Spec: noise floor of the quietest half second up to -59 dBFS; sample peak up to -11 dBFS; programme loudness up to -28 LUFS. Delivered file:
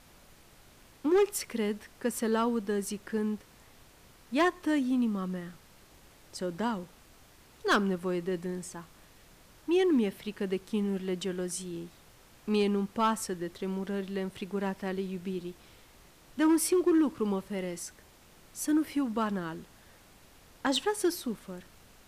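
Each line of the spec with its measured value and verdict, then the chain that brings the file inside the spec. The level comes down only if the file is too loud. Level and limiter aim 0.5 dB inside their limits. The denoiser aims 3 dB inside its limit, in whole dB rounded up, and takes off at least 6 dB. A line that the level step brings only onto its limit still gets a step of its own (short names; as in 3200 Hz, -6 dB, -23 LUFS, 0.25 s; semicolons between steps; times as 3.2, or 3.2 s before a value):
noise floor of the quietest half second -57 dBFS: fail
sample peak -18.5 dBFS: OK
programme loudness -31.0 LUFS: OK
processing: denoiser 6 dB, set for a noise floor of -57 dBFS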